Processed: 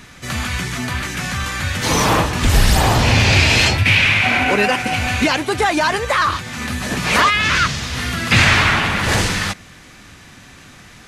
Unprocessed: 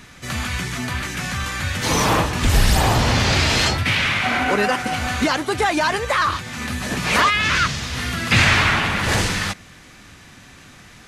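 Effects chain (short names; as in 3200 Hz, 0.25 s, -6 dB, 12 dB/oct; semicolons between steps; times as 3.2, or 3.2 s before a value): 3.03–5.5 thirty-one-band EQ 100 Hz +7 dB, 1250 Hz -5 dB, 2500 Hz +8 dB; gain +2.5 dB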